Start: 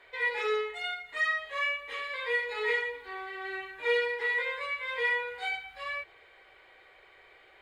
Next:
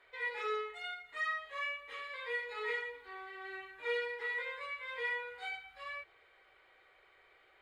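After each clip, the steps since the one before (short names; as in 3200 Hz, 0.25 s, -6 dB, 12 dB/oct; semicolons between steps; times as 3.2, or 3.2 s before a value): bell 1300 Hz +6.5 dB 0.23 oct; gain -8.5 dB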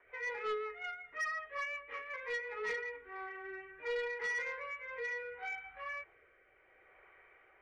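steep low-pass 2500 Hz 36 dB/oct; rotary speaker horn 5.5 Hz, later 0.7 Hz, at 2.57; soft clip -36 dBFS, distortion -14 dB; gain +4.5 dB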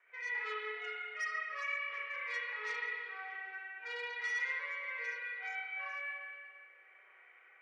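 band-pass 4400 Hz, Q 0.51; spring tank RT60 2 s, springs 30/56 ms, chirp 70 ms, DRR -4.5 dB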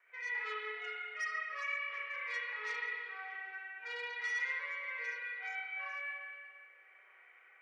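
low shelf 330 Hz -5.5 dB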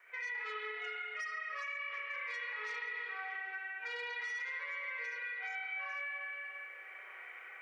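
vocal rider within 4 dB 2 s; limiter -33 dBFS, peak gain reduction 6.5 dB; compressor 2.5:1, threshold -49 dBFS, peak gain reduction 8 dB; gain +7.5 dB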